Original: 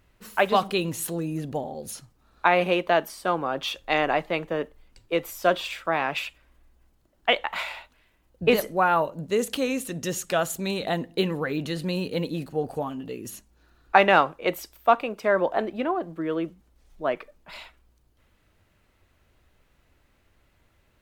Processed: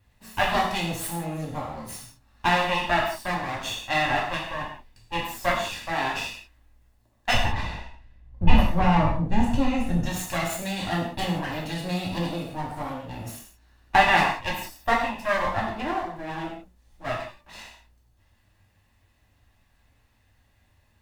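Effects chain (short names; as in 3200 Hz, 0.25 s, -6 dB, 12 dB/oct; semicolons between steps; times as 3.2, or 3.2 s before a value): minimum comb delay 1.1 ms; 7.34–10.06 RIAA curve playback; non-linear reverb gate 0.21 s falling, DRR -3.5 dB; gain -4 dB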